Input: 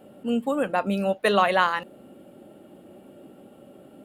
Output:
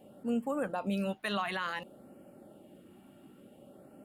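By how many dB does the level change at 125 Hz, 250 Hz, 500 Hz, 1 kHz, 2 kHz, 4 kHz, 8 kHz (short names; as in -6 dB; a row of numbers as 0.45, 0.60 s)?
-6.5, -7.0, -12.5, -13.5, -11.0, -9.0, -8.5 dB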